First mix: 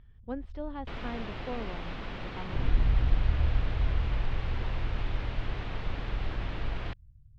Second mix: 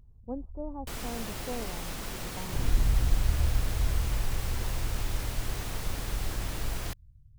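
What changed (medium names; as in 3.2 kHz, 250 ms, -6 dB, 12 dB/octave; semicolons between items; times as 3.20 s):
speech: add steep low-pass 1 kHz 36 dB/octave; master: remove low-pass 3.4 kHz 24 dB/octave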